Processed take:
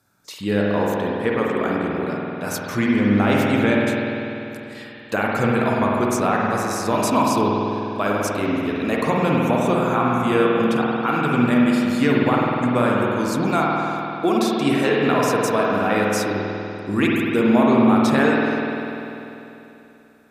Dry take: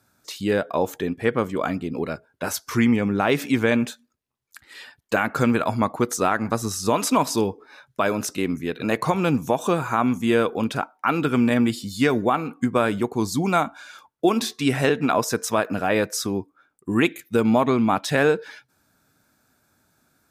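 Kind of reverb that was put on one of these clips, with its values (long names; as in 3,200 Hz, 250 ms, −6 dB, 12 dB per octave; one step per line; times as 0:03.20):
spring reverb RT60 3.1 s, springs 49 ms, chirp 55 ms, DRR −3.5 dB
level −2 dB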